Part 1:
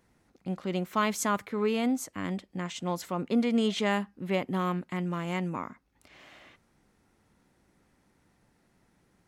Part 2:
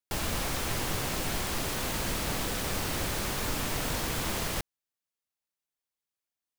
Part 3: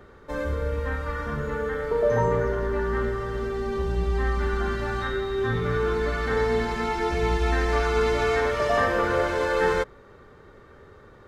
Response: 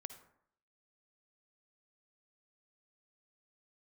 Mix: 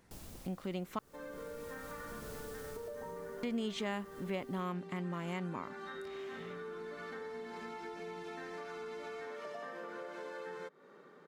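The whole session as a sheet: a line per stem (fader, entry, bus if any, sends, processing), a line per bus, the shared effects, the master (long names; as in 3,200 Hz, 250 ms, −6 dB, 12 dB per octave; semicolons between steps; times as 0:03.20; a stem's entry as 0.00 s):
+2.0 dB, 0.00 s, muted 0:00.99–0:03.43, no bus, no send, no processing
0:02.06 −13.5 dB → 0:02.32 −5 dB, 0.00 s, bus A, no send, parametric band 1,800 Hz −10 dB 2.8 octaves; automatic ducking −11 dB, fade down 0.90 s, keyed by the first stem
−7.0 dB, 0.85 s, bus A, no send, elliptic high-pass filter 160 Hz
bus A: 0.0 dB, downward compressor, threshold −39 dBFS, peak gain reduction 13.5 dB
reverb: not used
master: downward compressor 2 to 1, threshold −44 dBFS, peak gain reduction 13 dB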